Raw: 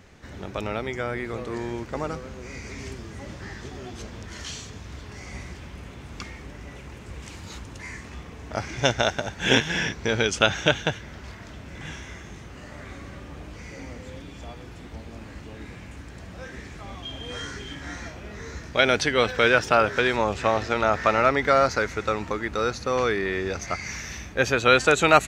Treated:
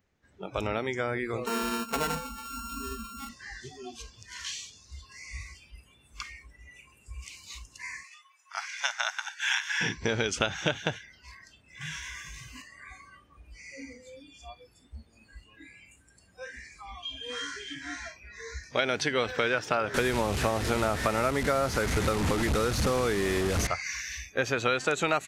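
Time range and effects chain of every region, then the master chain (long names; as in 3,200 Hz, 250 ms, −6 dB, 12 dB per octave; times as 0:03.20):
0:01.46–0:03.29: samples sorted by size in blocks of 32 samples + comb filter 4.5 ms, depth 75%
0:08.03–0:09.81: dynamic equaliser 3,300 Hz, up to −5 dB, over −34 dBFS, Q 1.5 + high-pass filter 1,000 Hz 24 dB per octave
0:11.81–0:12.62: high-shelf EQ 4,700 Hz +4.5 dB + envelope flattener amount 50%
0:19.94–0:23.67: linear delta modulator 64 kbit/s, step −22 dBFS + low-shelf EQ 450 Hz +7.5 dB
whole clip: noise reduction from a noise print of the clip's start 23 dB; downward compressor 5 to 1, threshold −24 dBFS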